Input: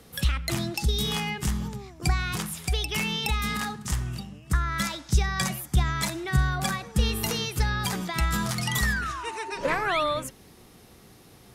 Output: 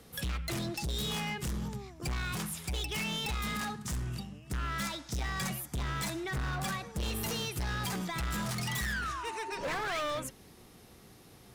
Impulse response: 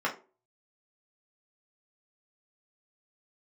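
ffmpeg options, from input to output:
-af "asoftclip=type=hard:threshold=0.0398,volume=0.668"

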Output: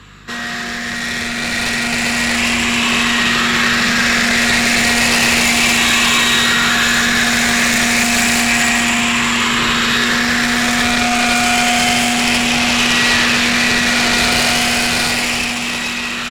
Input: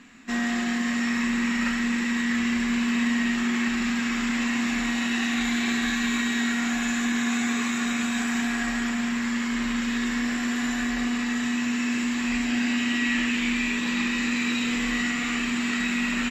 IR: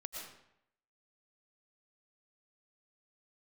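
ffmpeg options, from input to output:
-filter_complex "[0:a]afftfilt=real='re*pow(10,8/40*sin(2*PI*(0.63*log(max(b,1)*sr/1024/100)/log(2)-(0.31)*(pts-256)/sr)))':imag='im*pow(10,8/40*sin(2*PI*(0.63*log(max(b,1)*sr/1024/100)/log(2)-(0.31)*(pts-256)/sr)))':win_size=1024:overlap=0.75,aeval=exprs='val(0)+0.00355*(sin(2*PI*50*n/s)+sin(2*PI*2*50*n/s)/2+sin(2*PI*3*50*n/s)/3+sin(2*PI*4*50*n/s)/4+sin(2*PI*5*50*n/s)/5)':c=same,acrossover=split=240|1500[s0][s1][s2];[s1]alimiter=level_in=2:limit=0.0631:level=0:latency=1,volume=0.501[s3];[s0][s3][s2]amix=inputs=3:normalize=0,highpass=f=56:w=0.5412,highpass=f=56:w=1.3066,asplit=2[s4][s5];[s5]adelay=66,lowpass=f=1400:p=1,volume=0.355,asplit=2[s6][s7];[s7]adelay=66,lowpass=f=1400:p=1,volume=0.34,asplit=2[s8][s9];[s9]adelay=66,lowpass=f=1400:p=1,volume=0.34,asplit=2[s10][s11];[s11]adelay=66,lowpass=f=1400:p=1,volume=0.34[s12];[s4][s6][s8][s10][s12]amix=inputs=5:normalize=0,aeval=exprs='0.211*sin(PI/2*3.55*val(0)/0.211)':c=same,adynamicequalizer=threshold=0.0126:dfrequency=2500:dqfactor=6.4:tfrequency=2500:tqfactor=6.4:attack=5:release=100:ratio=0.375:range=1.5:mode=boostabove:tftype=bell,dynaudnorm=f=440:g=9:m=3.76,equalizer=f=260:t=o:w=0.51:g=-10.5,volume=0.631"

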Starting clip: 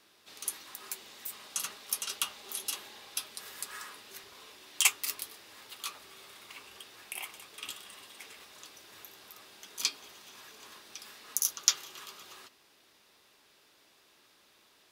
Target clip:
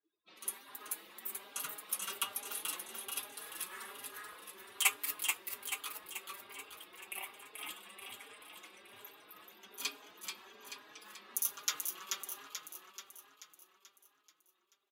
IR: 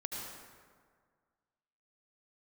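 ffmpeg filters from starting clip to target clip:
-filter_complex "[0:a]afftdn=nr=33:nf=-56,equalizer=f=5400:w=1.1:g=-12,asplit=2[s0][s1];[s1]aecho=0:1:434|868|1302|1736|2170|2604|3038:0.596|0.316|0.167|0.0887|0.047|0.0249|0.0132[s2];[s0][s2]amix=inputs=2:normalize=0,asplit=2[s3][s4];[s4]adelay=4.4,afreqshift=1.2[s5];[s3][s5]amix=inputs=2:normalize=1,volume=1.33"

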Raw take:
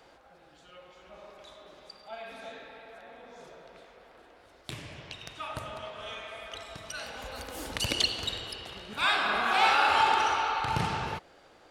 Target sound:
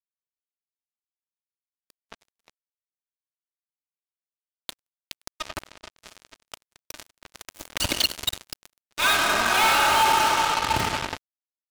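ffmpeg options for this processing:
-filter_complex "[0:a]aecho=1:1:3.2:0.63,asplit=2[s0][s1];[s1]acompressor=threshold=0.01:ratio=5,volume=0.794[s2];[s0][s2]amix=inputs=2:normalize=0,acrusher=bits=3:mix=0:aa=0.5,asoftclip=type=hard:threshold=0.0891,volume=1.88"

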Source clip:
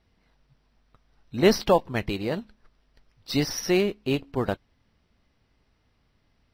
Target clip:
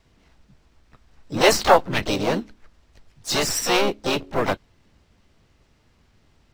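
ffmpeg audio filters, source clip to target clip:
-filter_complex "[0:a]acrossover=split=420|460|3000[s0][s1][s2][s3];[s0]aeval=exprs='0.0398*(abs(mod(val(0)/0.0398+3,4)-2)-1)':c=same[s4];[s4][s1][s2][s3]amix=inputs=4:normalize=0,asplit=4[s5][s6][s7][s8];[s6]asetrate=58866,aresample=44100,atempo=0.749154,volume=0.631[s9];[s7]asetrate=66075,aresample=44100,atempo=0.66742,volume=0.447[s10];[s8]asetrate=88200,aresample=44100,atempo=0.5,volume=0.251[s11];[s5][s9][s10][s11]amix=inputs=4:normalize=0,volume=1.88"

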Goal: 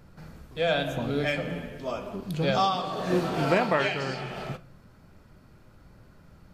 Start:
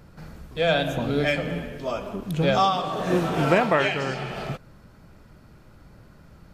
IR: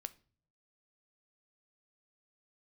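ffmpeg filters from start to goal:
-filter_complex "[0:a]asettb=1/sr,asplit=3[s0][s1][s2];[s0]atrim=end=2.134[s3];[s1]atrim=start=2.13:end=4.21,asetpts=PTS-STARTPTS,afade=t=in:d=0.004:c=qsin,afade=t=out:st=2.076:d=0.004:c=qsin,equalizer=f=4500:w=5.2:g=8.5[s4];[s2]atrim=start=4.206[s5];[s3][s4]acrossfade=d=0.004:c1=hsin:c2=qsin[s6];[s6][s5]acrossfade=d=0.004:c1=qsin:c2=hsin[s7];[1:a]atrim=start_sample=2205[s8];[s7][s8]afir=irnorm=-1:irlink=0"

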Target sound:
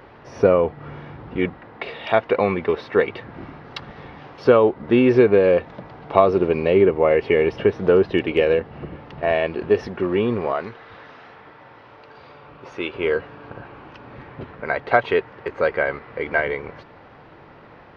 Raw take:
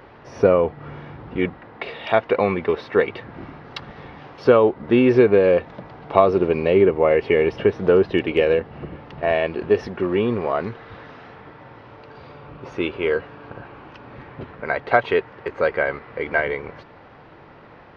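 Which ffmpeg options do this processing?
-filter_complex "[0:a]asettb=1/sr,asplit=3[s0][s1][s2];[s0]atrim=end=10.534[s3];[s1]atrim=start=10.53:end=12.94,asetpts=PTS-STARTPTS,afade=t=in:d=0.004:c=qsin,afade=t=out:st=2.406:d=0.004:c=qsin,lowshelf=f=360:g=-9[s4];[s2]atrim=start=12.936[s5];[s3][s4]acrossfade=d=0.004:c1=hsin:c2=qsin[s6];[s6][s5]acrossfade=d=0.004:c1=qsin:c2=hsin"

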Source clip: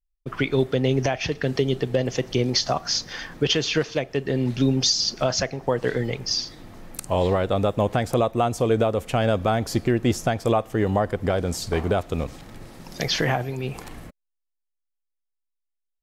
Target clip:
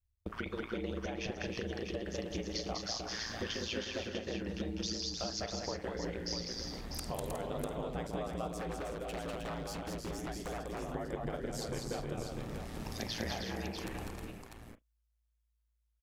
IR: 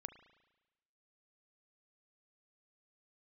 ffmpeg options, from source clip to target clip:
-filter_complex "[0:a]aeval=exprs='val(0)*sin(2*PI*56*n/s)':c=same,acompressor=threshold=0.0126:ratio=6,aecho=1:1:199|313|364|647:0.631|0.501|0.282|0.447,asettb=1/sr,asplit=3[s0][s1][s2];[s0]atrim=end=8.514[s3];[s1]atrim=start=8.51:end=10.95,asetpts=PTS-STARTPTS,afade=t=in:d=0.004:c=qsin,afade=t=out:st=2.436:d=0.004:c=qsin,aeval=exprs='0.02*(abs(mod(val(0)/0.02+3,4)-2)-1)':c=same[s4];[s2]atrim=start=10.946[s5];[s3][s4]acrossfade=d=0.004:c1=hsin:c2=qsin[s6];[s6][s5]acrossfade=d=0.004:c1=qsin:c2=hsin[s7];[1:a]atrim=start_sample=2205,atrim=end_sample=3087[s8];[s7][s8]afir=irnorm=-1:irlink=0,volume=1.88"

